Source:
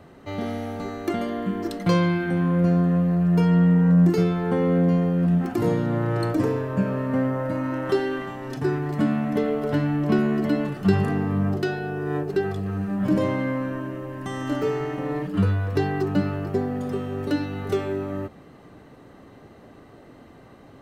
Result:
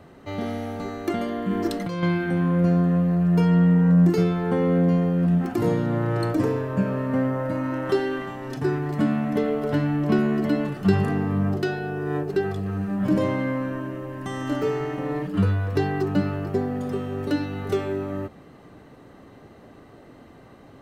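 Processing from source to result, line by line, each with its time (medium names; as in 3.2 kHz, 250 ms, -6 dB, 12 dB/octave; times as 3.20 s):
1.50–2.03 s: compressor with a negative ratio -25 dBFS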